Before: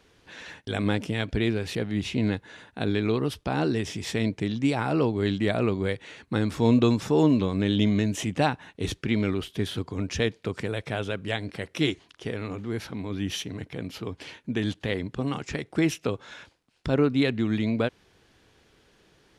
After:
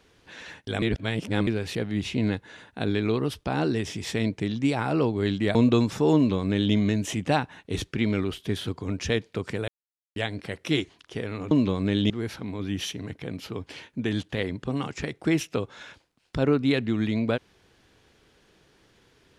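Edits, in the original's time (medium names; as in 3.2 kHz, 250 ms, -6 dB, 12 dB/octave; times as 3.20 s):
0.82–1.47 s: reverse
5.55–6.65 s: delete
7.25–7.84 s: copy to 12.61 s
10.78–11.26 s: mute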